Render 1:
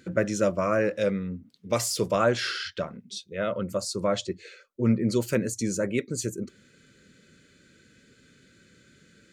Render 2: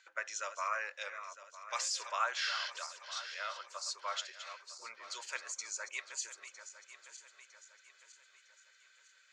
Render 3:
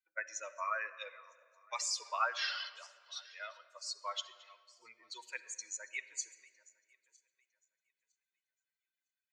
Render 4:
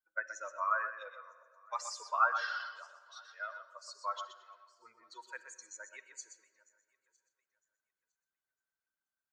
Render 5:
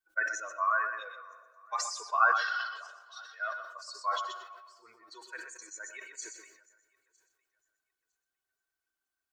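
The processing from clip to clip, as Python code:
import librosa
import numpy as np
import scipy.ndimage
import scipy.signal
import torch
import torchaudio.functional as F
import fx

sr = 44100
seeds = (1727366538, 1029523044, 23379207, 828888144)

y1 = fx.reverse_delay_fb(x, sr, ms=478, feedback_pct=64, wet_db=-11)
y1 = scipy.signal.sosfilt(scipy.signal.ellip(3, 1.0, 60, [920.0, 7000.0], 'bandpass', fs=sr, output='sos'), y1)
y1 = F.gain(torch.from_numpy(y1), -4.5).numpy()
y2 = fx.bin_expand(y1, sr, power=2.0)
y2 = fx.room_shoebox(y2, sr, seeds[0], volume_m3=3900.0, walls='mixed', distance_m=0.58)
y2 = F.gain(torch.from_numpy(y2), 3.0).numpy()
y3 = fx.high_shelf_res(y2, sr, hz=1800.0, db=-7.5, q=3.0)
y3 = y3 + 10.0 ** (-9.0 / 20.0) * np.pad(y3, (int(124 * sr / 1000.0), 0))[:len(y3)]
y4 = y3 + 0.61 * np.pad(y3, (int(2.7 * sr / 1000.0), 0))[:len(y3)]
y4 = fx.sustainer(y4, sr, db_per_s=59.0)
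y4 = F.gain(torch.from_numpy(y4), 2.0).numpy()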